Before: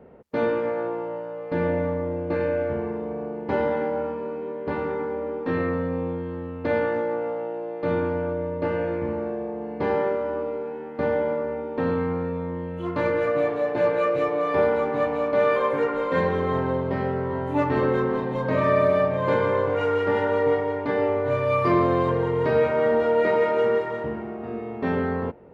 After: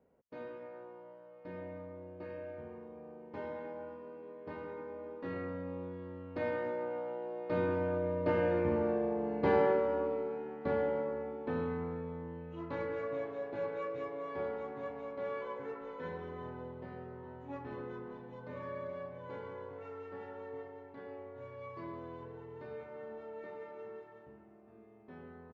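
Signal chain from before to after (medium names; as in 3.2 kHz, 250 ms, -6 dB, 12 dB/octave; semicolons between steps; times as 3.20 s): Doppler pass-by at 9.08 s, 15 m/s, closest 15 m; resampled via 16 kHz; trim -3 dB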